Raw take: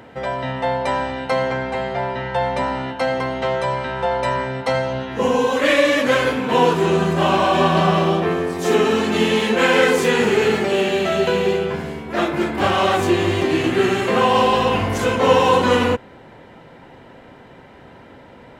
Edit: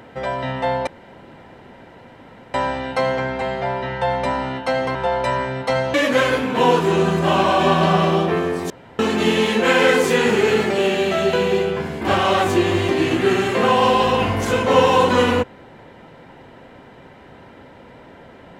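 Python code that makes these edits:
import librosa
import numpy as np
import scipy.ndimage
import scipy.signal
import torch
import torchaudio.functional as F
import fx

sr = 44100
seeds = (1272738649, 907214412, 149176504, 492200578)

y = fx.edit(x, sr, fx.insert_room_tone(at_s=0.87, length_s=1.67),
    fx.cut(start_s=3.28, length_s=0.66),
    fx.cut(start_s=4.93, length_s=0.95),
    fx.room_tone_fill(start_s=8.64, length_s=0.29),
    fx.cut(start_s=11.95, length_s=0.59), tone=tone)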